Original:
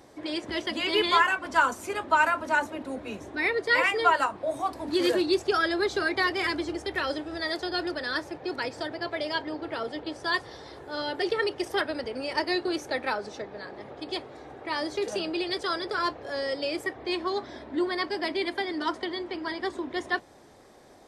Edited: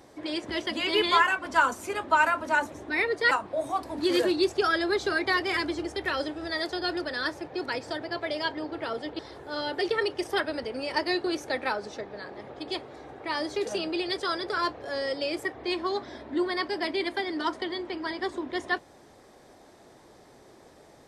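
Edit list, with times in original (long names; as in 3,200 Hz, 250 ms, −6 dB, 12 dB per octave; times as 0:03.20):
0:02.72–0:03.18: remove
0:03.77–0:04.21: remove
0:10.09–0:10.60: remove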